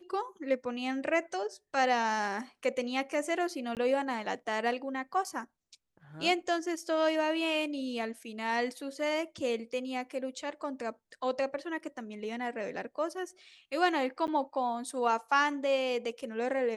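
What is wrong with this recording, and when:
3.75–3.77 s: dropout 18 ms
14.27–14.28 s: dropout 9.4 ms

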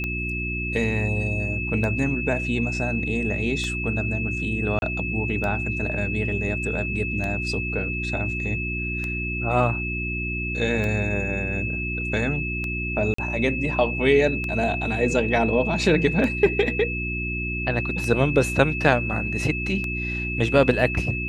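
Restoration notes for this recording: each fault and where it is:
hum 60 Hz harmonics 6 -30 dBFS
tick 33 1/3 rpm -16 dBFS
whine 2.6 kHz -28 dBFS
4.79–4.82 s: dropout 31 ms
13.14–13.18 s: dropout 44 ms

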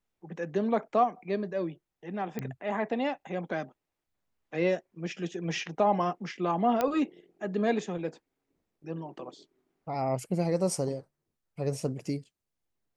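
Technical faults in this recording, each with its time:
2.39 s: pop -20 dBFS
6.81 s: pop -14 dBFS

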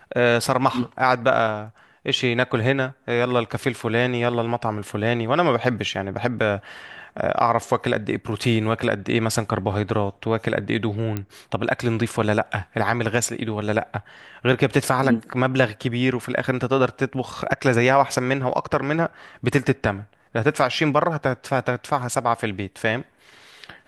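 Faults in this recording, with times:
11.17 s: pop -13 dBFS

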